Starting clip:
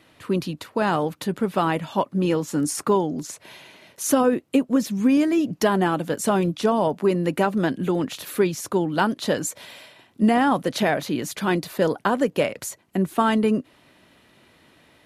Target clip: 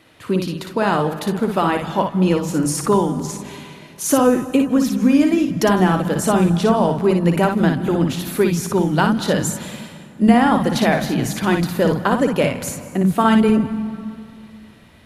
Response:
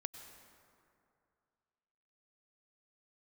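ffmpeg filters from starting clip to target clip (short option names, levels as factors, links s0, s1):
-filter_complex "[0:a]asplit=2[s0][s1];[s1]asubboost=boost=9.5:cutoff=130[s2];[1:a]atrim=start_sample=2205,adelay=58[s3];[s2][s3]afir=irnorm=-1:irlink=0,volume=0.841[s4];[s0][s4]amix=inputs=2:normalize=0,volume=1.41"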